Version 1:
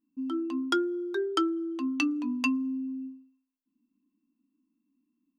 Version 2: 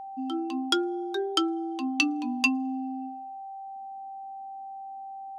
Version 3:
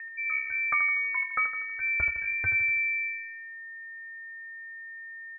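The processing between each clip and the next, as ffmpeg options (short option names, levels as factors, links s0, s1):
-af "highshelf=f=2400:t=q:w=1.5:g=7,aeval=exprs='val(0)+0.0141*sin(2*PI*780*n/s)':c=same"
-filter_complex "[0:a]lowpass=f=2200:t=q:w=0.5098,lowpass=f=2200:t=q:w=0.6013,lowpass=f=2200:t=q:w=0.9,lowpass=f=2200:t=q:w=2.563,afreqshift=-2600,asplit=2[s0][s1];[s1]aecho=0:1:80|160|240|320|400|480:0.398|0.199|0.0995|0.0498|0.0249|0.0124[s2];[s0][s2]amix=inputs=2:normalize=0"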